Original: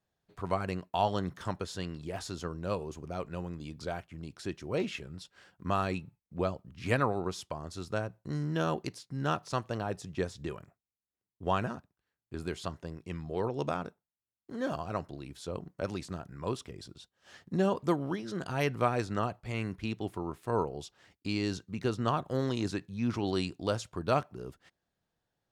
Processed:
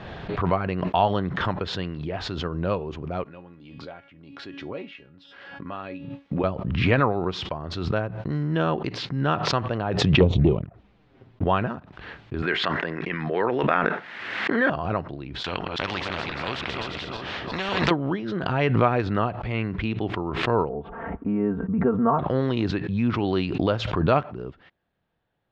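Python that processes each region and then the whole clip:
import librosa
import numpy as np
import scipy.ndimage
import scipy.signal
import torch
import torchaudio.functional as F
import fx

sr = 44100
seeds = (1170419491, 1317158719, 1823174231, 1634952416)

y = fx.chain(x, sr, fx.highpass(hz=180.0, slope=6),
    fx.comb_fb(f0_hz=280.0, decay_s=0.25, harmonics='all', damping=0.0, mix_pct=80), at=(3.24, 6.44))
y = fx.chain(y, sr, fx.tilt_shelf(db=7.5, hz=820.0),
    fx.leveller(passes=2),
    fx.env_flanger(rest_ms=8.1, full_db=-25.0), at=(10.2, 11.44))
y = fx.chain(y, sr, fx.highpass(hz=230.0, slope=12),
    fx.peak_eq(hz=1800.0, db=14.0, octaves=0.93),
    fx.sustainer(db_per_s=28.0), at=(12.42, 14.7))
y = fx.chain(y, sr, fx.reverse_delay_fb(ms=173, feedback_pct=56, wet_db=-8.0),
    fx.spectral_comp(ratio=4.0), at=(15.44, 17.91))
y = fx.chain(y, sr, fx.lowpass(hz=1300.0, slope=24),
    fx.comb(ms=4.4, depth=0.84), at=(20.69, 22.19))
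y = scipy.signal.sosfilt(scipy.signal.butter(4, 3400.0, 'lowpass', fs=sr, output='sos'), y)
y = fx.pre_swell(y, sr, db_per_s=40.0)
y = y * librosa.db_to_amplitude(7.0)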